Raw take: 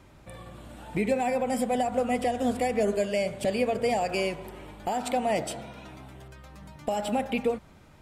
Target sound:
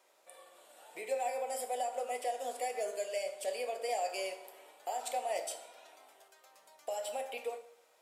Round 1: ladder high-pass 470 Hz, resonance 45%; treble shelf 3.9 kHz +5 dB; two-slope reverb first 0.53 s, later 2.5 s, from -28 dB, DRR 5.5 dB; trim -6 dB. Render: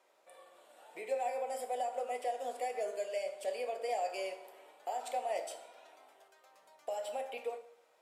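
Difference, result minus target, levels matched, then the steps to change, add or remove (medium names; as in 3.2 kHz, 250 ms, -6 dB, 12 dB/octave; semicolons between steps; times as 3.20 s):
8 kHz band -6.5 dB
change: treble shelf 3.9 kHz +14 dB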